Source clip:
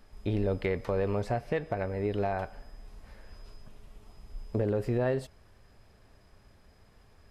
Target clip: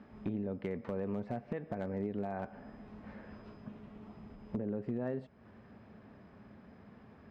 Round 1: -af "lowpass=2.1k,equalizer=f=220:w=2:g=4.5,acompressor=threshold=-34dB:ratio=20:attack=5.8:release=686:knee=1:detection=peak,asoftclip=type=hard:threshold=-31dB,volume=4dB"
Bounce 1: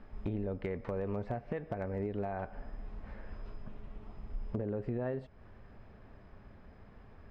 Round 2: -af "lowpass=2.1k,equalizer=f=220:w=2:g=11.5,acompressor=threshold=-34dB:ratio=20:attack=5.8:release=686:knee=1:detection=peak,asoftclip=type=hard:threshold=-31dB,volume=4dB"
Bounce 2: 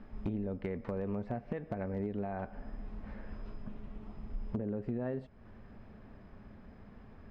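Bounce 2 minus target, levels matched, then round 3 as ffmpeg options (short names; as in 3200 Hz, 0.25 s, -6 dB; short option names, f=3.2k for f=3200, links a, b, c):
125 Hz band +2.0 dB
-af "lowpass=2.1k,equalizer=f=220:w=2:g=11.5,acompressor=threshold=-34dB:ratio=20:attack=5.8:release=686:knee=1:detection=peak,highpass=110,asoftclip=type=hard:threshold=-31dB,volume=4dB"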